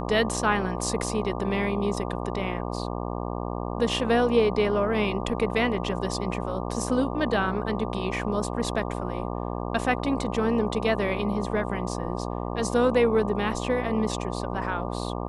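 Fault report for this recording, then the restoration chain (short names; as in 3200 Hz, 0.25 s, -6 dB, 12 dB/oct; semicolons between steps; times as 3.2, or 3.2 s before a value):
buzz 60 Hz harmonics 20 -31 dBFS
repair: de-hum 60 Hz, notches 20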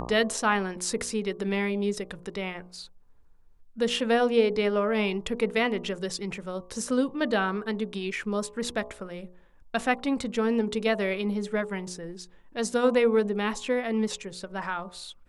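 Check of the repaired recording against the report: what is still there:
none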